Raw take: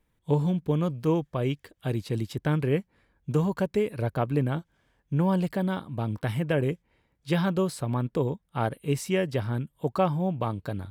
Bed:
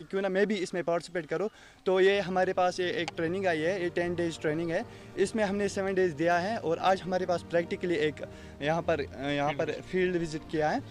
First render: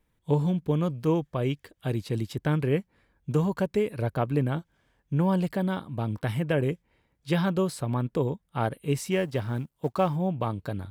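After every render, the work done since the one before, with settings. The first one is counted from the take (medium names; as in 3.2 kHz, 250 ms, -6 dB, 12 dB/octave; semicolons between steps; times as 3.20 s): 9.11–10.16 s: companding laws mixed up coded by A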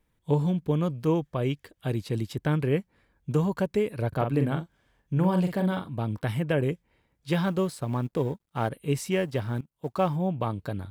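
4.08–5.89 s: doubling 44 ms -6.5 dB; 7.30–8.69 s: companding laws mixed up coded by A; 9.61–10.05 s: fade in, from -18.5 dB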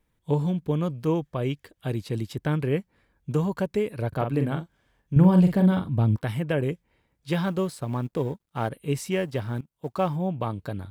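5.16–6.16 s: bass shelf 240 Hz +12 dB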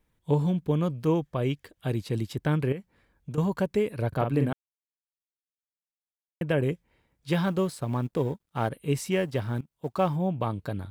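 2.72–3.38 s: compression 4:1, threshold -33 dBFS; 4.53–6.41 s: mute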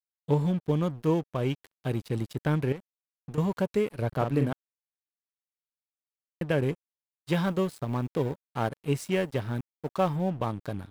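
crossover distortion -42.5 dBFS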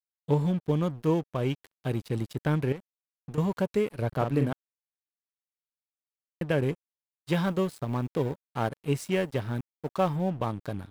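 no audible change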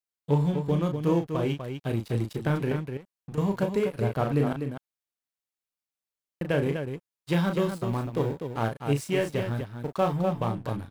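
loudspeakers at several distances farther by 12 m -6 dB, 85 m -7 dB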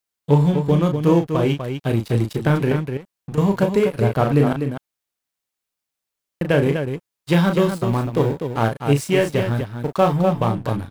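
trim +8.5 dB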